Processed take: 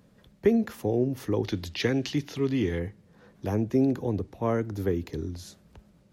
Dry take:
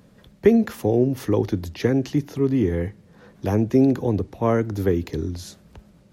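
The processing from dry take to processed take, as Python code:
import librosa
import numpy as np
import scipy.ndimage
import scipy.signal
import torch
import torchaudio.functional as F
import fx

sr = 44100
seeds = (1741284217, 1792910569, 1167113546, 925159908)

y = fx.peak_eq(x, sr, hz=3400.0, db=12.5, octaves=2.1, at=(1.44, 2.78), fade=0.02)
y = y * librosa.db_to_amplitude(-6.5)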